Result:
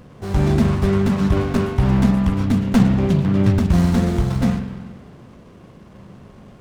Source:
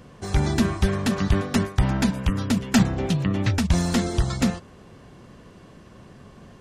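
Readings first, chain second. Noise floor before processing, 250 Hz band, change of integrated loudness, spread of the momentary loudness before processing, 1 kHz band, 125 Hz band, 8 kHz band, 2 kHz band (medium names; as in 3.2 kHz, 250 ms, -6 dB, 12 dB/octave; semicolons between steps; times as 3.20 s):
-48 dBFS, +6.0 dB, +5.0 dB, 4 LU, +2.5 dB, +6.0 dB, -6.5 dB, -1.0 dB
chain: harmonic-percussive split harmonic +5 dB; spring tank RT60 1.4 s, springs 41/46 ms, chirp 50 ms, DRR 6.5 dB; sliding maximum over 17 samples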